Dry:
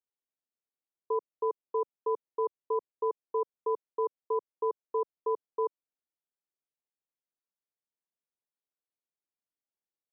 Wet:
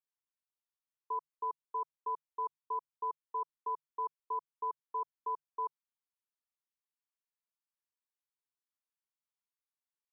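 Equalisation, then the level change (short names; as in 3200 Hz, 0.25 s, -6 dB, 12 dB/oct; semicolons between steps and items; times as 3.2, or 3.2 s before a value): resonant low shelf 750 Hz -8 dB, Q 3; notches 50/100/150 Hz; -6.5 dB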